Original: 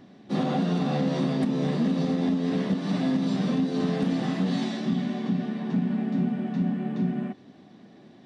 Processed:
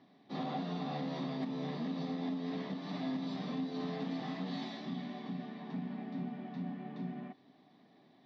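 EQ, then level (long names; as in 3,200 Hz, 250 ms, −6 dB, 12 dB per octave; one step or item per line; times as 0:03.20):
loudspeaker in its box 200–4,700 Hz, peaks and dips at 210 Hz −9 dB, 350 Hz −8 dB, 520 Hz −8 dB, 1,500 Hz −8 dB, 2,800 Hz −6 dB
−6.5 dB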